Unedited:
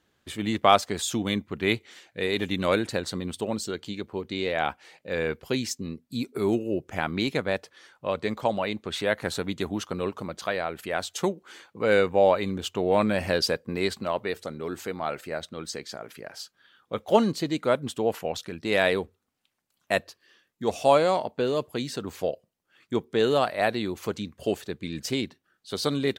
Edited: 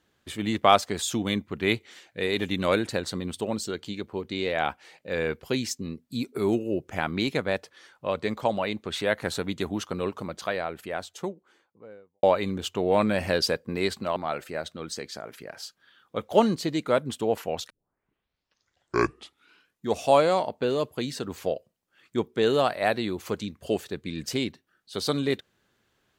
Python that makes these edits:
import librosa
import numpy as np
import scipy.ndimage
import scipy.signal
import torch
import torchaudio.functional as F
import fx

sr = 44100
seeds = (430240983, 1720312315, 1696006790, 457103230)

y = fx.studio_fade_out(x, sr, start_s=10.26, length_s=1.97)
y = fx.edit(y, sr, fx.cut(start_s=14.16, length_s=0.77),
    fx.tape_start(start_s=18.47, length_s=2.16), tone=tone)